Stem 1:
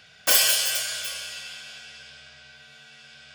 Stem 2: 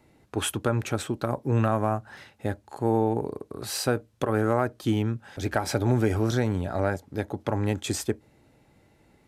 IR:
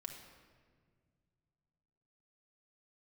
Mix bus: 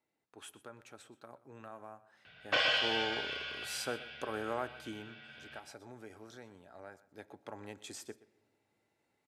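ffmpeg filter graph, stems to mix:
-filter_complex "[0:a]lowpass=f=3.3k:w=0.5412,lowpass=f=3.3k:w=1.3066,adelay=2250,volume=-4dB,asplit=2[a][b];[b]volume=-7.5dB[c];[1:a]highpass=f=560:p=1,volume=-4dB,afade=t=in:st=2.36:d=0.45:silence=0.266073,afade=t=out:st=4.6:d=0.77:silence=0.266073,afade=t=in:st=7.01:d=0.25:silence=0.473151,asplit=3[d][e][f];[e]volume=-11.5dB[g];[f]volume=-17dB[h];[2:a]atrim=start_sample=2205[i];[g][i]afir=irnorm=-1:irlink=0[j];[c][h]amix=inputs=2:normalize=0,aecho=0:1:124:1[k];[a][d][j][k]amix=inputs=4:normalize=0,lowpass=12k"

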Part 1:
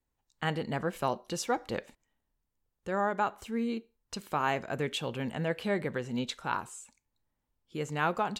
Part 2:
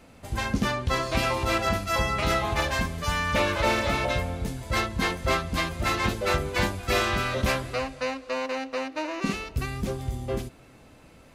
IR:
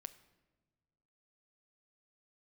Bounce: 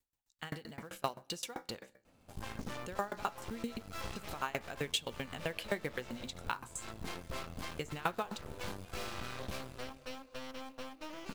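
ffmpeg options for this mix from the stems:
-filter_complex "[0:a]highshelf=f=2.2k:g=10.5,bandreject=f=65.09:t=h:w=4,bandreject=f=130.18:t=h:w=4,bandreject=f=195.27:t=h:w=4,bandreject=f=260.36:t=h:w=4,bandreject=f=325.45:t=h:w=4,bandreject=f=390.54:t=h:w=4,bandreject=f=455.63:t=h:w=4,bandreject=f=520.72:t=h:w=4,bandreject=f=585.81:t=h:w=4,bandreject=f=650.9:t=h:w=4,bandreject=f=715.99:t=h:w=4,bandreject=f=781.08:t=h:w=4,bandreject=f=846.17:t=h:w=4,bandreject=f=911.26:t=h:w=4,bandreject=f=976.35:t=h:w=4,bandreject=f=1.04144k:t=h:w=4,bandreject=f=1.10653k:t=h:w=4,bandreject=f=1.17162k:t=h:w=4,bandreject=f=1.23671k:t=h:w=4,bandreject=f=1.3018k:t=h:w=4,bandreject=f=1.36689k:t=h:w=4,bandreject=f=1.43198k:t=h:w=4,bandreject=f=1.49707k:t=h:w=4,bandreject=f=1.56216k:t=h:w=4,bandreject=f=1.62725k:t=h:w=4,bandreject=f=1.69234k:t=h:w=4,bandreject=f=1.75743k:t=h:w=4,bandreject=f=1.82252k:t=h:w=4,bandreject=f=1.88761k:t=h:w=4,bandreject=f=1.9527k:t=h:w=4,bandreject=f=2.01779k:t=h:w=4,bandreject=f=2.08288k:t=h:w=4,bandreject=f=2.14797k:t=h:w=4,bandreject=f=2.21306k:t=h:w=4,bandreject=f=2.27815k:t=h:w=4,bandreject=f=2.34324k:t=h:w=4,aeval=exprs='val(0)*pow(10,-29*if(lt(mod(7.7*n/s,1),2*abs(7.7)/1000),1-mod(7.7*n/s,1)/(2*abs(7.7)/1000),(mod(7.7*n/s,1)-2*abs(7.7)/1000)/(1-2*abs(7.7)/1000))/20)':c=same,volume=-3.5dB,asplit=3[a][b][c];[b]volume=-5.5dB[d];[1:a]equalizer=f=1.9k:t=o:w=0.29:g=-7.5,acompressor=threshold=-32dB:ratio=1.5,aeval=exprs='0.168*(cos(1*acos(clip(val(0)/0.168,-1,1)))-cos(1*PI/2))+0.0376*(cos(8*acos(clip(val(0)/0.168,-1,1)))-cos(8*PI/2))':c=same,adelay=2050,volume=-15dB[e];[c]apad=whole_len=590750[f];[e][f]sidechaincompress=threshold=-53dB:ratio=12:attack=16:release=134[g];[2:a]atrim=start_sample=2205[h];[d][h]afir=irnorm=-1:irlink=0[i];[a][g][i]amix=inputs=3:normalize=0,acrusher=bits=5:mode=log:mix=0:aa=0.000001"

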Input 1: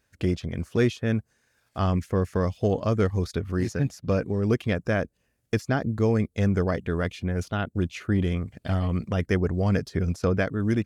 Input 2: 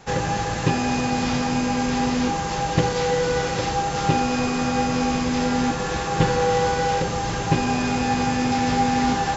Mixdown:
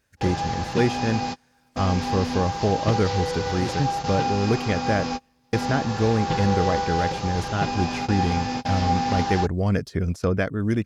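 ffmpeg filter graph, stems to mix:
-filter_complex "[0:a]volume=1dB,asplit=2[a][b];[1:a]lowpass=f=5.1k:t=q:w=2,equalizer=f=840:t=o:w=0.52:g=6,adelay=100,volume=-7.5dB[c];[b]apad=whole_len=417503[d];[c][d]sidechaingate=range=-36dB:threshold=-41dB:ratio=16:detection=peak[e];[a][e]amix=inputs=2:normalize=0"

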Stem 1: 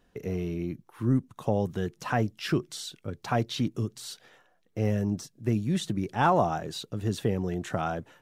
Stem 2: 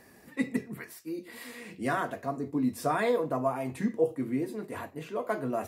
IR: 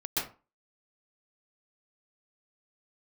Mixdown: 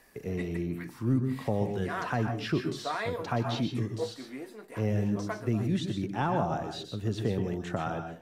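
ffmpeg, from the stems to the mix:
-filter_complex "[0:a]acrossover=split=370[a][b];[b]acompressor=threshold=-26dB:ratio=6[c];[a][c]amix=inputs=2:normalize=0,volume=-4dB,asplit=3[d][e][f];[e]volume=-10.5dB[g];[1:a]aeval=exprs='if(lt(val(0),0),0.708*val(0),val(0))':c=same,highpass=f=790:p=1,volume=-0.5dB[h];[f]apad=whole_len=250367[i];[h][i]sidechaincompress=threshold=-35dB:ratio=8:attack=16:release=183[j];[2:a]atrim=start_sample=2205[k];[g][k]afir=irnorm=-1:irlink=0[l];[d][j][l]amix=inputs=3:normalize=0,acrossover=split=5800[m][n];[n]acompressor=threshold=-58dB:ratio=4:attack=1:release=60[o];[m][o]amix=inputs=2:normalize=0"

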